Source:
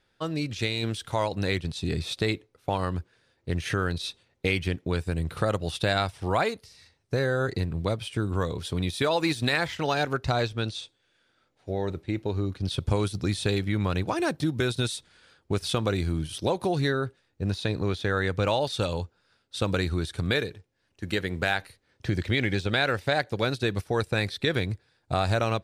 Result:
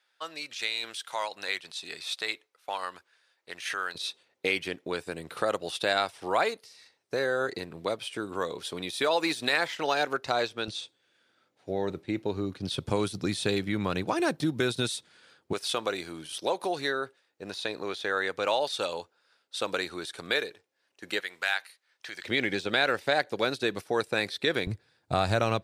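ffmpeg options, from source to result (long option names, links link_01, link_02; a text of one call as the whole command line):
ffmpeg -i in.wav -af "asetnsamples=nb_out_samples=441:pad=0,asendcmd='3.95 highpass f 360;10.68 highpass f 170;15.53 highpass f 460;21.2 highpass f 1100;22.24 highpass f 270;24.67 highpass f 110',highpass=910" out.wav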